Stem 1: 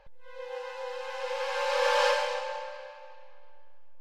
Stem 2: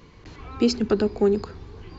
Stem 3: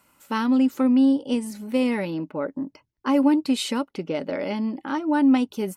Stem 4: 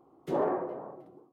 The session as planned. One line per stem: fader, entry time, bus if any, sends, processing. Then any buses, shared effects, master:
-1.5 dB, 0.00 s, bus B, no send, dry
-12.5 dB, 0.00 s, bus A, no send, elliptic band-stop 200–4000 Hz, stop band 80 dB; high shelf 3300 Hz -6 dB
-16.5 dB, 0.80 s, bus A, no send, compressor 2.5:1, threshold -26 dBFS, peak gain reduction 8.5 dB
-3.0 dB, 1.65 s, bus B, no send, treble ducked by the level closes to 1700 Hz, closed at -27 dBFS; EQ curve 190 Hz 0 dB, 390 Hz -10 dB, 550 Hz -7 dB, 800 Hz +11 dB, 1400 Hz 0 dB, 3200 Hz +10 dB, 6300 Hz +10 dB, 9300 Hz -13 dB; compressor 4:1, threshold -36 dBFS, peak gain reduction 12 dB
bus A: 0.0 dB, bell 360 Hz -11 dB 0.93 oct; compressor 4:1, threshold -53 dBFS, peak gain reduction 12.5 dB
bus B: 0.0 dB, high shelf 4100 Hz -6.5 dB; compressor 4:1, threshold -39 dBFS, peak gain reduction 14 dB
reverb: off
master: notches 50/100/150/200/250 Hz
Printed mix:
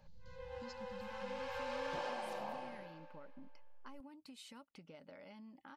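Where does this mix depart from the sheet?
stem 1 -1.5 dB -> -10.0 dB; master: missing notches 50/100/150/200/250 Hz

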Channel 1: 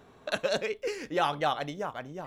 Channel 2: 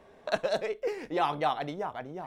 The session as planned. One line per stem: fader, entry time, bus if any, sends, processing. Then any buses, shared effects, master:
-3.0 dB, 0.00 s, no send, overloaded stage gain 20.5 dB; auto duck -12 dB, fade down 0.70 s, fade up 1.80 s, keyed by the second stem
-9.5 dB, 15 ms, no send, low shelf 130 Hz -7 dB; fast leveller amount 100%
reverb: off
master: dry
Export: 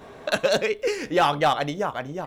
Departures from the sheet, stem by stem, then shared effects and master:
stem 1 -3.0 dB -> +8.0 dB; stem 2 -9.5 dB -> -21.5 dB

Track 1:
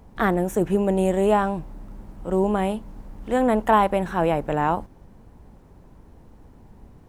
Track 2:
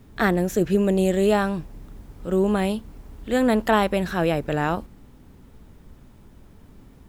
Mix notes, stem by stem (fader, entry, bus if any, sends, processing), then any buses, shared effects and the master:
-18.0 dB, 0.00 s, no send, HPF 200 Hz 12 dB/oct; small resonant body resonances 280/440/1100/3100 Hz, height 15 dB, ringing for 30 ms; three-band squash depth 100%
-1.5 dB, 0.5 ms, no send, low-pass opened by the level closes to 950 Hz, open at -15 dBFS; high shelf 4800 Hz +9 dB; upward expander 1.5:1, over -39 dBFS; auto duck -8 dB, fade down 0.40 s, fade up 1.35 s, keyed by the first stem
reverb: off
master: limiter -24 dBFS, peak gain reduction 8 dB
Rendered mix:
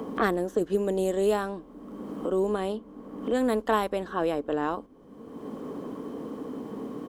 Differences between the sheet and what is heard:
stem 2: polarity flipped; master: missing limiter -24 dBFS, peak gain reduction 8 dB

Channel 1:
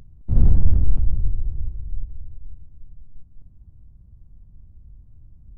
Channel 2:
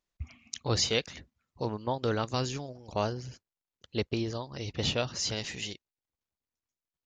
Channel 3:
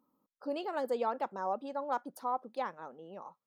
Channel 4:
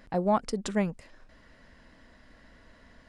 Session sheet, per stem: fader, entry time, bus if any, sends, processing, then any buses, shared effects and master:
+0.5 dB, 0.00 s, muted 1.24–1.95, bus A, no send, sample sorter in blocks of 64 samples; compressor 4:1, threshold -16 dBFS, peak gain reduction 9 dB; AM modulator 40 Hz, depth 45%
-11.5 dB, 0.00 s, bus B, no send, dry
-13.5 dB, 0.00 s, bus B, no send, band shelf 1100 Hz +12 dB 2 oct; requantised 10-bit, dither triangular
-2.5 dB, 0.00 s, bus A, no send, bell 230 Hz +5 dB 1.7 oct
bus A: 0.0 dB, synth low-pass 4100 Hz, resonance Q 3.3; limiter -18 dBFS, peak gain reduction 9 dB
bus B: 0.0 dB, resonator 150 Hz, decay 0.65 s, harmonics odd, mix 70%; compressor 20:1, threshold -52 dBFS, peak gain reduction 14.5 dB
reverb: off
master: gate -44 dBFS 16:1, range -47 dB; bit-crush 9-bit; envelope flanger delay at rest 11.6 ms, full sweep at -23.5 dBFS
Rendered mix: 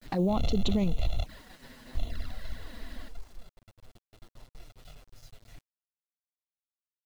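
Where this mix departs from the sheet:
stem 3 -13.5 dB -> -22.0 dB; stem 4 -2.5 dB -> +8.0 dB

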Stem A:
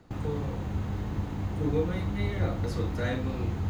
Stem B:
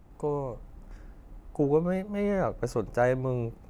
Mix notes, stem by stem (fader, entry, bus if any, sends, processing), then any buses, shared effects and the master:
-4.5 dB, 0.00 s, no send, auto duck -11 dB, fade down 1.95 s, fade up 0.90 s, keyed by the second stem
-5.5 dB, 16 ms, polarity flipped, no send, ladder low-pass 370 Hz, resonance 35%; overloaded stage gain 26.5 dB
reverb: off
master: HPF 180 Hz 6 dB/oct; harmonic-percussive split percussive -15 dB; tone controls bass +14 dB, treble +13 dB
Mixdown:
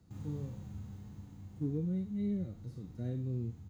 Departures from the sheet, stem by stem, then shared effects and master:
stem A -4.5 dB -> -13.5 dB; stem B: polarity flipped

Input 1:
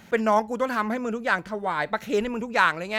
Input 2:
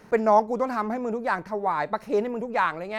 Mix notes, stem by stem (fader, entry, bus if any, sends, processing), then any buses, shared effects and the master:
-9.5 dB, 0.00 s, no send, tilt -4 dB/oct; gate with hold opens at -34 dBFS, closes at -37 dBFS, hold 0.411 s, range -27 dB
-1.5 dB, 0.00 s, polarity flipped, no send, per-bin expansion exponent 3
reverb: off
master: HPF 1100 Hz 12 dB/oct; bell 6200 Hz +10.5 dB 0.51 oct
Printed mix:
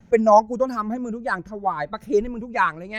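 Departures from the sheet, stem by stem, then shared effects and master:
stem 2 -1.5 dB -> +6.5 dB; master: missing HPF 1100 Hz 12 dB/oct

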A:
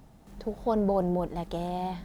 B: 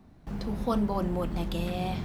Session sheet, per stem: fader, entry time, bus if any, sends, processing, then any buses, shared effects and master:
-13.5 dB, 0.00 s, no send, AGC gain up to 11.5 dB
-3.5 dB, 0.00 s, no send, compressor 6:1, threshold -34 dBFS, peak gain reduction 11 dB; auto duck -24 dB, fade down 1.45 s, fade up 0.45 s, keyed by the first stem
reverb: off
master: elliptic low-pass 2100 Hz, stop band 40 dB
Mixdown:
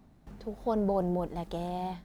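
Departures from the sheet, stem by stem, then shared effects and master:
stem B: polarity flipped; master: missing elliptic low-pass 2100 Hz, stop band 40 dB

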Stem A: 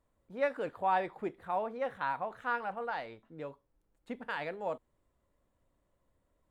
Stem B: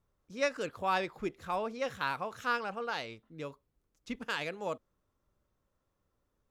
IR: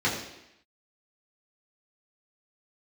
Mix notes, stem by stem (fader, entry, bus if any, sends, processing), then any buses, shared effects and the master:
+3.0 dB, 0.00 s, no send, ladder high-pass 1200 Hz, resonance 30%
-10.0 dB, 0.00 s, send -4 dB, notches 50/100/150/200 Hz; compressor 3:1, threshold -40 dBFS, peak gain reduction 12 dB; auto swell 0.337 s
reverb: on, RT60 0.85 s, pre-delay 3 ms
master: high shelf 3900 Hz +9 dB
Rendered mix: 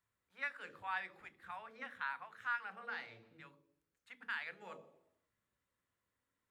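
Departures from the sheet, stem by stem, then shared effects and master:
stem B -10.0 dB -> -21.5 dB; master: missing high shelf 3900 Hz +9 dB

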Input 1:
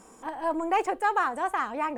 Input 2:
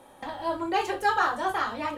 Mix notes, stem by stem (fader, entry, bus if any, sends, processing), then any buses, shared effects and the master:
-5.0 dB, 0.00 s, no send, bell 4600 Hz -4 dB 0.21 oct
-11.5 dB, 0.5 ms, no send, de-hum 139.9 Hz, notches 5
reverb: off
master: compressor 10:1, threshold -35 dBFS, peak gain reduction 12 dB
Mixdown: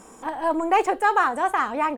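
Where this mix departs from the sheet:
stem 1 -5.0 dB -> +5.5 dB; master: missing compressor 10:1, threshold -35 dBFS, peak gain reduction 12 dB

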